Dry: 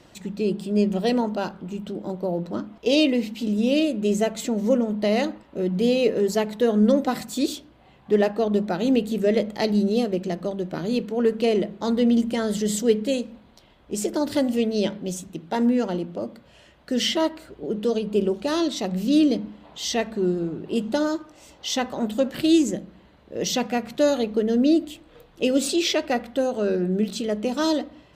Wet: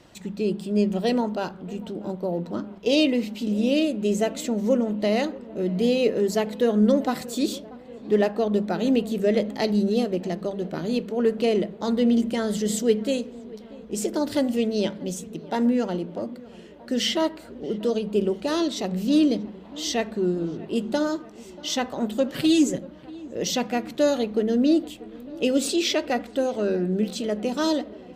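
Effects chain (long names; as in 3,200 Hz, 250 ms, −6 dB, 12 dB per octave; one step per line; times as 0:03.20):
0:22.32–0:22.78: comb filter 7.2 ms, depth 86%
feedback echo with a low-pass in the loop 636 ms, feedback 73%, low-pass 1,700 Hz, level −20 dB
level −1 dB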